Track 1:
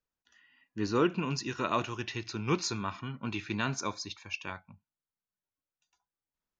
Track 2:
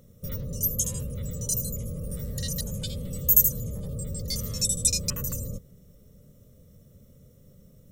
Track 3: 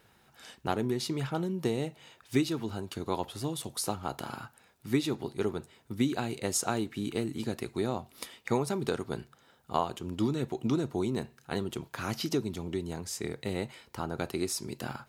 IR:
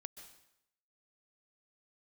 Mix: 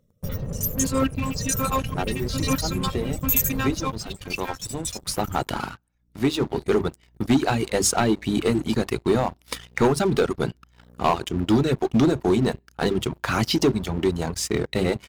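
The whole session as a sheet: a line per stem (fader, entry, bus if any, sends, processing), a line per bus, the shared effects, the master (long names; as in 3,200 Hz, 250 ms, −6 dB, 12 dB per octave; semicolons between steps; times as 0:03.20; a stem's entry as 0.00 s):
−2.5 dB, 0.00 s, no send, phases set to zero 265 Hz
0:03.71 −5.5 dB → 0:04.31 −16 dB, 0.00 s, send −16.5 dB, mains-hum notches 60/120 Hz
+2.5 dB, 1.30 s, send −20 dB, mains-hum notches 50/100/150/200/250/300/350/400 Hz; mains hum 60 Hz, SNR 18 dB; automatic ducking −12 dB, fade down 0.25 s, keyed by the first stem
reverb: on, RT60 0.80 s, pre-delay 118 ms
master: reverb reduction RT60 0.74 s; high-shelf EQ 7,600 Hz −9 dB; leveller curve on the samples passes 3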